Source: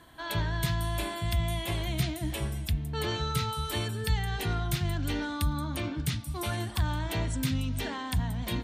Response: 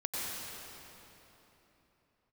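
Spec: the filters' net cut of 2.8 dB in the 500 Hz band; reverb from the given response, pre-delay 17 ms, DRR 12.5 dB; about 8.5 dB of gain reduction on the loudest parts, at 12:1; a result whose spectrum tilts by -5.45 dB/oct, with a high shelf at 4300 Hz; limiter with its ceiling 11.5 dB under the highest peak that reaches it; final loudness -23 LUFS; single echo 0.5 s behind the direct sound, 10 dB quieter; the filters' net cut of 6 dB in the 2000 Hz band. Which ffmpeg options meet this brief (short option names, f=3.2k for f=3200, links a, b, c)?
-filter_complex "[0:a]equalizer=f=500:t=o:g=-3.5,equalizer=f=2k:t=o:g=-7,highshelf=f=4.3k:g=-3,acompressor=threshold=-31dB:ratio=12,alimiter=level_in=9.5dB:limit=-24dB:level=0:latency=1,volume=-9.5dB,aecho=1:1:500:0.316,asplit=2[a][b];[1:a]atrim=start_sample=2205,adelay=17[c];[b][c]afir=irnorm=-1:irlink=0,volume=-17.5dB[d];[a][d]amix=inputs=2:normalize=0,volume=18dB"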